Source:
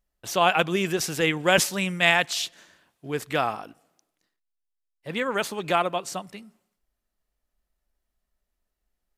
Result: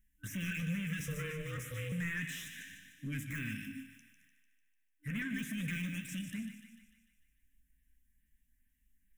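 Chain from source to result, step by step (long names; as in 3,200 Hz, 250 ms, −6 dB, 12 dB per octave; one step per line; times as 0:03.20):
de-essing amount 95%
brick-wall band-stop 300–1,500 Hz
in parallel at +1.5 dB: brickwall limiter −27.5 dBFS, peak gain reduction 12 dB
on the sum: downward compressor 4 to 1, threshold −28 dBFS, peak gain reduction 7 dB
0:01.06–0:01.92: ring modulation 310 Hz
flanger 0.32 Hz, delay 8.5 ms, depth 7.8 ms, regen +66%
soft clipping −37.5 dBFS, distortion −10 dB
auto-filter notch saw up 2.3 Hz 560–7,500 Hz
phaser with its sweep stopped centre 1,900 Hz, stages 4
delay with a high-pass on its return 149 ms, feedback 56%, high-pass 1,400 Hz, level −8.5 dB
on a send at −12 dB: convolution reverb RT60 0.75 s, pre-delay 46 ms
on the sum: level +4 dB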